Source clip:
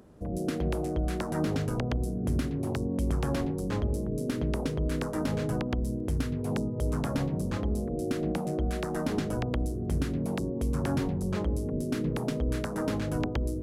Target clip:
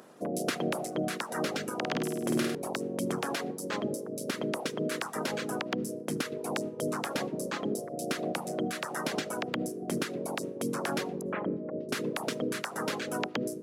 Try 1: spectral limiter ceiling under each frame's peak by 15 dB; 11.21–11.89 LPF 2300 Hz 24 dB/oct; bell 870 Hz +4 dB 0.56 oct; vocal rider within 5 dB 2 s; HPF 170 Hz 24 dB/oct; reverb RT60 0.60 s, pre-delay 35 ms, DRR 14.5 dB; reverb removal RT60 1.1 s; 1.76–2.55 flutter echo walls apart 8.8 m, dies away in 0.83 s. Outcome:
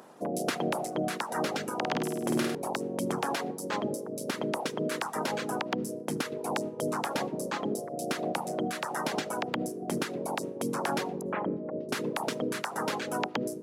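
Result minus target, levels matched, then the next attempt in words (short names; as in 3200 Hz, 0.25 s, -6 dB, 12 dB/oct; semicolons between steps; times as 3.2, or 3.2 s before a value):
1000 Hz band +3.5 dB
spectral limiter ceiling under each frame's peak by 15 dB; 11.21–11.89 LPF 2300 Hz 24 dB/oct; bell 870 Hz -3 dB 0.56 oct; vocal rider within 5 dB 2 s; HPF 170 Hz 24 dB/oct; reverb RT60 0.60 s, pre-delay 35 ms, DRR 14.5 dB; reverb removal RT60 1.1 s; 1.76–2.55 flutter echo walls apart 8.8 m, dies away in 0.83 s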